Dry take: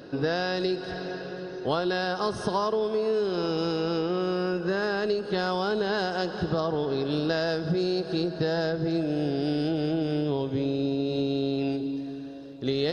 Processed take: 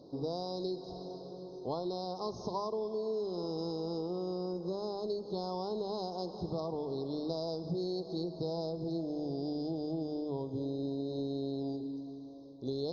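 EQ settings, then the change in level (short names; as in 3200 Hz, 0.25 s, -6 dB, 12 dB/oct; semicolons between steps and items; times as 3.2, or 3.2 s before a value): elliptic band-stop 1000–4200 Hz, stop band 50 dB; brick-wall FIR low-pass 6700 Hz; notches 50/100/150/200 Hz; -8.5 dB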